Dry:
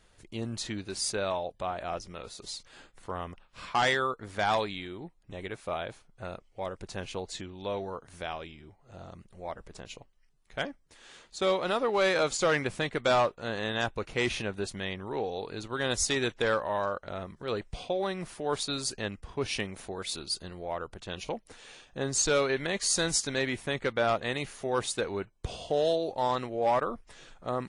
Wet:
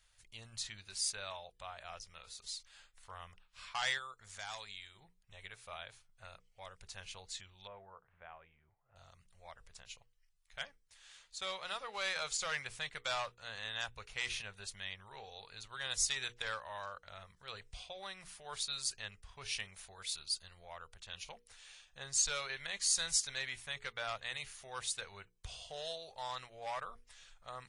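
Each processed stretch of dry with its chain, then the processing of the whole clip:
0:03.98–0:05.00: parametric band 7,000 Hz +10 dB 0.67 octaves + downward compressor 1.5 to 1, threshold −41 dBFS
0:07.67–0:08.96: Gaussian smoothing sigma 4.8 samples + low-shelf EQ 96 Hz −10.5 dB
whole clip: guitar amp tone stack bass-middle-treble 10-0-10; mains-hum notches 60/120/180/240/300/360/420/480 Hz; level −3 dB

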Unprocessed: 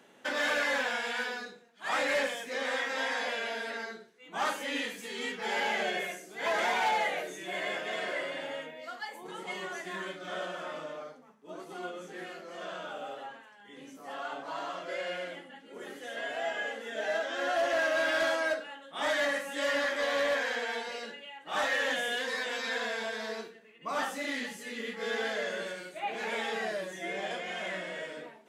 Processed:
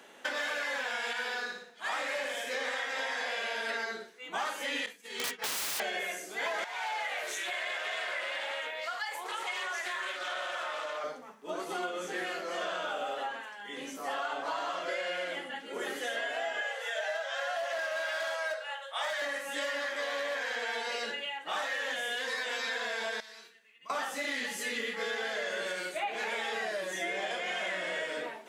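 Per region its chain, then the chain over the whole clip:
0:01.13–0:03.69: flutter between parallel walls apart 10 metres, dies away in 0.53 s + flanger 1.2 Hz, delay 2.6 ms, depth 5.1 ms, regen −80%
0:04.86–0:05.80: downward expander −32 dBFS + wrap-around overflow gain 33 dB
0:06.64–0:11.04: high-pass filter 700 Hz + downward compressor 3 to 1, threshold −42 dBFS + highs frequency-modulated by the lows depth 0.38 ms
0:16.61–0:19.22: Butterworth high-pass 490 Hz 72 dB per octave + hard clipping −24 dBFS
0:23.20–0:23.90: guitar amp tone stack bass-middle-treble 5-5-5 + downward compressor 3 to 1, threshold −54 dBFS
whole clip: speech leveller within 4 dB 0.5 s; high-pass filter 520 Hz 6 dB per octave; downward compressor 6 to 1, threshold −39 dBFS; level +7.5 dB

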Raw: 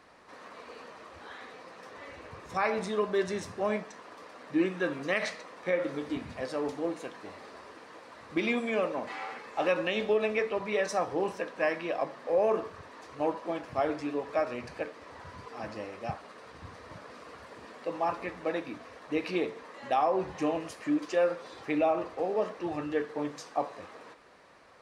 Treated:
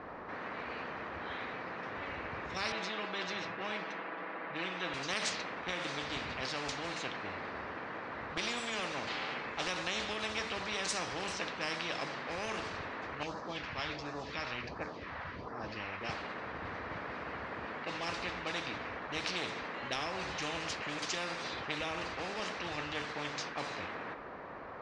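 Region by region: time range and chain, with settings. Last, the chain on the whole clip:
0:02.72–0:04.94: band-pass filter 260–2,700 Hz + comb filter 6.1 ms, depth 66%
0:13.23–0:16.01: low-pass filter 6,700 Hz 24 dB per octave + all-pass phaser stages 2, 1.4 Hz, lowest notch 340–2,800 Hz
whole clip: low-pass that shuts in the quiet parts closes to 1,500 Hz, open at −25.5 dBFS; low-pass filter 7,900 Hz 24 dB per octave; every bin compressed towards the loudest bin 4 to 1; level −5.5 dB

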